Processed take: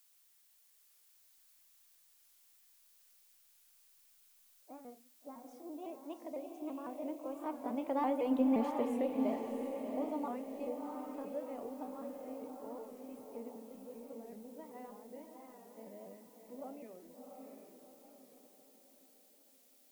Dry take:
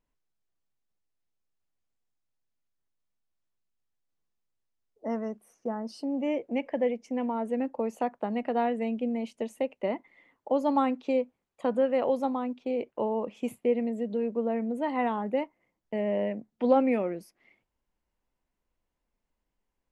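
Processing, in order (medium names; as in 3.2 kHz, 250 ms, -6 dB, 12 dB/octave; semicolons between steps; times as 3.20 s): sawtooth pitch modulation +3 st, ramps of 180 ms; Doppler pass-by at 8.48 s, 24 m/s, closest 5.3 m; peaking EQ 3.4 kHz -7 dB 2.4 oct; in parallel at 0 dB: compression, threshold -51 dBFS, peak gain reduction 21 dB; on the sum: added noise blue -70 dBFS; on a send: echo that smears into a reverb 705 ms, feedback 45%, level -4 dB; on the sum: simulated room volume 160 m³, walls furnished, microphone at 0.43 m; warped record 45 rpm, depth 100 cents; trim +1.5 dB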